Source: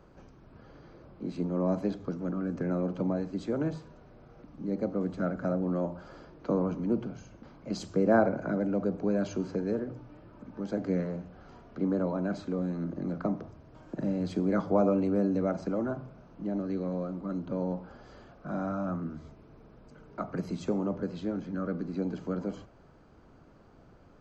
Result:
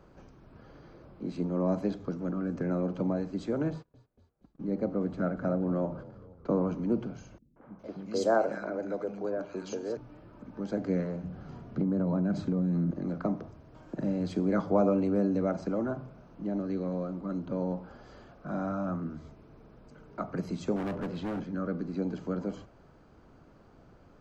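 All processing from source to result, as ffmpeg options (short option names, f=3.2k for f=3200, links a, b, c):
-filter_complex "[0:a]asettb=1/sr,asplit=3[a][b][c];[a]atrim=end=3.704[d];[b]atrim=start=3.7:end=6.63,asetpts=PTS-STARTPTS,afade=t=in:d=0.004:c=qsin,afade=t=out:st=2.926:d=0.004:c=qsin,aemphasis=mode=reproduction:type=cd,agate=range=-29dB:threshold=-47dB:ratio=16:release=100:detection=peak,asplit=6[e][f][g][h][i][j];[f]adelay=235,afreqshift=-35,volume=-19dB[k];[g]adelay=470,afreqshift=-70,volume=-23.3dB[l];[h]adelay=705,afreqshift=-105,volume=-27.6dB[m];[i]adelay=940,afreqshift=-140,volume=-31.9dB[n];[j]adelay=1175,afreqshift=-175,volume=-36.2dB[o];[e][k][l][m][n][o]amix=inputs=6:normalize=0,atrim=end_sample=129213[p];[c]atrim=start=6.626[q];[d][p]acrossfade=d=0.004:c1=hsin:c2=qsin[r];[r][q]acrossfade=d=0.004:c1=qsin:c2=hsin,asettb=1/sr,asplit=3[s][t][u];[s]atrim=end=7.384[v];[t]atrim=start=7.38:end=9.97,asetpts=PTS-STARTPTS,afade=t=in:d=0.004:c=qsin,afade=t=out:st=2.586:d=0.004:c=qsin,bass=f=250:g=-12,treble=f=4k:g=2,acrossover=split=220|1900[w][x][y];[x]adelay=180[z];[y]adelay=410[aa];[w][z][aa]amix=inputs=3:normalize=0,atrim=end_sample=114219[ab];[u]atrim=start=9.966[ac];[v][ab]acrossfade=d=0.004:c1=hsin:c2=qsin[ad];[ad][ac]acrossfade=d=0.004:c1=qsin:c2=hsin,asettb=1/sr,asplit=3[ae][af][ag];[ae]atrim=end=11.234[ah];[af]atrim=start=11.23:end=12.91,asetpts=PTS-STARTPTS,afade=t=in:d=0.004:c=qsin,afade=t=out:st=1.676:d=0.004:c=qsin,equalizer=f=140:t=o:w=1.8:g=13,acompressor=threshold=-24dB:ratio=10:attack=3.2:release=140:knee=1:detection=peak[ai];[ag]atrim=start=12.906[aj];[ah][ai]acrossfade=d=0.004:c1=hsin:c2=qsin[ak];[ak][aj]acrossfade=d=0.004:c1=qsin:c2=hsin,asettb=1/sr,asplit=3[al][am][an];[al]atrim=end=20.764[ao];[am]atrim=start=20.76:end=21.44,asetpts=PTS-STARTPTS,afade=t=in:d=0.004:c=qsin,afade=t=out:st=0.676:d=0.004:c=qsin,bass=f=250:g=-2,treble=f=4k:g=-8,acontrast=20,volume=31dB,asoftclip=hard,volume=-31dB[ap];[an]atrim=start=21.436[aq];[ao][ap]acrossfade=d=0.004:c1=hsin:c2=qsin[ar];[ar][aq]acrossfade=d=0.004:c1=qsin:c2=hsin"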